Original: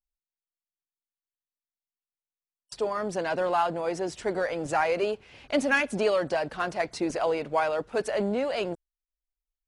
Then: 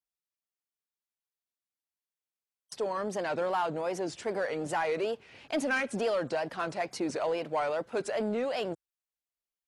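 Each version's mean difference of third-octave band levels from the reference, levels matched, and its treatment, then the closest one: 2.5 dB: HPF 110 Hz 12 dB/oct; in parallel at -3 dB: limiter -22.5 dBFS, peak gain reduction 10.5 dB; on the sum: wow and flutter 130 cents; soft clip -13.5 dBFS, distortion -23 dB; gain -6.5 dB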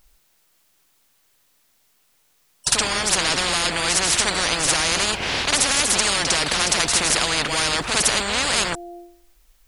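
13.0 dB: de-hum 347.2 Hz, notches 2; on a send: reverse echo 53 ms -8.5 dB; on the sum: maximiser +16 dB; spectral compressor 10:1; gain -1 dB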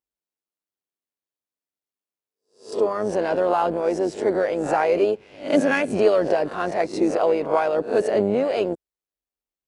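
5.0 dB: spectral swells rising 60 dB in 0.36 s; HPF 70 Hz; bell 370 Hz +10.5 dB 2.3 oct; AM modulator 100 Hz, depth 35%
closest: first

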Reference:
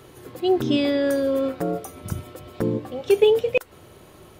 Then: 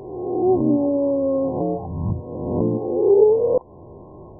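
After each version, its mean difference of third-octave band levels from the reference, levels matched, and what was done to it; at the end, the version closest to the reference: 10.5 dB: spectral swells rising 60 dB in 1.10 s; in parallel at -3 dB: compressor, threshold -32 dBFS, peak gain reduction 20 dB; on the sum: brick-wall FIR low-pass 1100 Hz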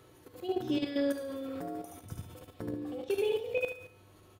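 4.0 dB: resonator 100 Hz, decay 0.43 s, harmonics odd, mix 80%; on a send: feedback echo 71 ms, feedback 45%, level -3 dB; on the sum: level quantiser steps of 10 dB; gain +1.5 dB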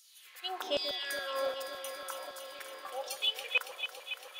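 15.0 dB: HPF 450 Hz 12 dB/oct; LFO high-pass saw down 1.3 Hz 590–5700 Hz; on a send: echo with dull and thin repeats by turns 0.14 s, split 1000 Hz, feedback 88%, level -8 dB; on the sum: gain -5 dB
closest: second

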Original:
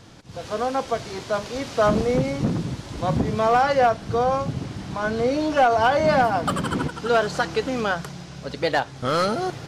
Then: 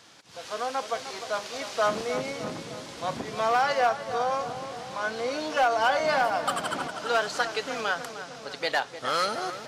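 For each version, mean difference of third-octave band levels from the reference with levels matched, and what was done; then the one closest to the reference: 6.0 dB: HPF 1200 Hz 6 dB/oct; hard clip -15 dBFS, distortion -28 dB; on a send: darkening echo 0.304 s, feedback 68%, low-pass 1600 Hz, level -10 dB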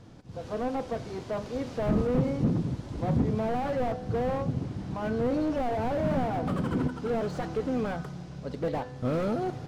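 4.5 dB: tilt shelf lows +6 dB; resonator 250 Hz, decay 0.82 s, mix 60%; slew limiter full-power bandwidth 25 Hz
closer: second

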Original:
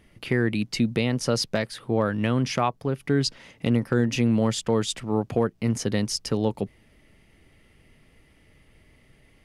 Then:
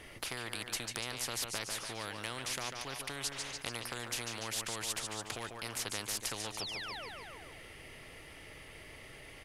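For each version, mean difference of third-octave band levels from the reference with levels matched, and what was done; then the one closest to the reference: 17.5 dB: painted sound fall, 6.59–7.09, 410–5800 Hz -35 dBFS; bell 210 Hz -14 dB 1 oct; on a send: feedback echo 0.145 s, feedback 43%, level -15 dB; on the sum: spectral compressor 4:1; gain -5.5 dB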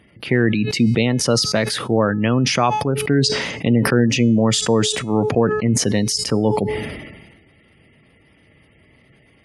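5.5 dB: spectral gate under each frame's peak -30 dB strong; HPF 86 Hz; de-hum 427.2 Hz, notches 28; sustainer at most 43 dB/s; gain +6 dB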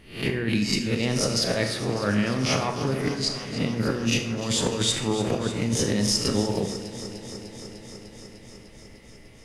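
12.0 dB: spectral swells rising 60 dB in 0.42 s; negative-ratio compressor -25 dBFS, ratio -0.5; on a send: echo with dull and thin repeats by turns 0.15 s, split 2400 Hz, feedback 88%, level -12 dB; on the sum: Schroeder reverb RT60 0.53 s, combs from 27 ms, DRR 6.5 dB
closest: second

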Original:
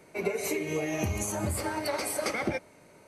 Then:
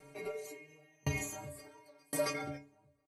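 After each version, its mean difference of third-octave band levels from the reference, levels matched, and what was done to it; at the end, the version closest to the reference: 10.0 dB: low shelf 65 Hz +10.5 dB; metallic resonator 140 Hz, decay 0.47 s, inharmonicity 0.008; outdoor echo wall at 240 m, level -9 dB; dB-ramp tremolo decaying 0.94 Hz, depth 38 dB; gain +13 dB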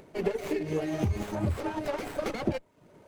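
5.5 dB: reverb removal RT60 0.52 s; tilt shelf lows +4 dB, about 720 Hz; upward compressor, threshold -50 dBFS; running maximum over 9 samples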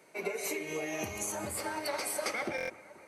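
4.0 dB: HPF 270 Hz 6 dB/oct; low shelf 470 Hz -4.5 dB; on a send: analogue delay 0.241 s, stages 4096, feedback 75%, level -19.5 dB; on the sum: stuck buffer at 2.56, samples 1024, times 5; gain -2 dB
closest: third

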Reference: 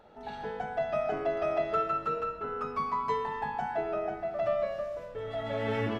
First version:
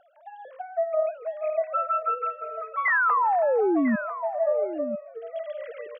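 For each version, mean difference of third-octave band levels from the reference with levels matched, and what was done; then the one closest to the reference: 15.5 dB: sine-wave speech; reverse; upward compressor, threshold -45 dBFS; reverse; painted sound fall, 2.85–3.96, 210–2100 Hz -24 dBFS; echo 0.997 s -12 dB; gain +2 dB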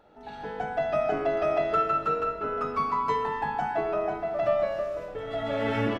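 1.5 dB: de-hum 109.7 Hz, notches 39; on a send: echo 1.004 s -18.5 dB; on the sum: AGC gain up to 6.5 dB; small resonant body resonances 300/1400/2600 Hz, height 7 dB, ringing for 85 ms; gain -2 dB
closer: second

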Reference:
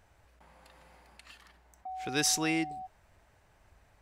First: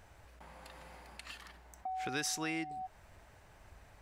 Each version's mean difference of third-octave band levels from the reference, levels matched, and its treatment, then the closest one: 8.5 dB: dynamic EQ 1500 Hz, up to +5 dB, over -50 dBFS, Q 1.2; compressor 3:1, threshold -44 dBFS, peak gain reduction 15 dB; gain +5 dB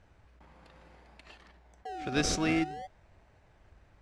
4.5 dB: in parallel at -5 dB: decimation with a swept rate 36×, swing 60% 0.54 Hz; on the sum: air absorption 85 m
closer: second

